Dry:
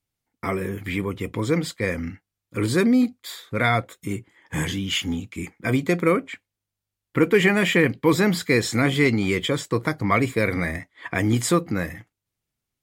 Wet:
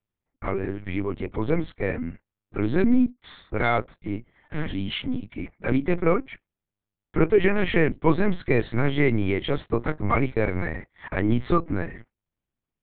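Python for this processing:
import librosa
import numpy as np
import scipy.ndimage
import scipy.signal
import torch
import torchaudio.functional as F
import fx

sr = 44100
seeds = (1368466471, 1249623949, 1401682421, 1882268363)

y = scipy.signal.sosfilt(scipy.signal.butter(2, 77.0, 'highpass', fs=sr, output='sos'), x)
y = fx.high_shelf(y, sr, hz=2100.0, db=-9.5)
y = fx.lpc_vocoder(y, sr, seeds[0], excitation='pitch_kept', order=8)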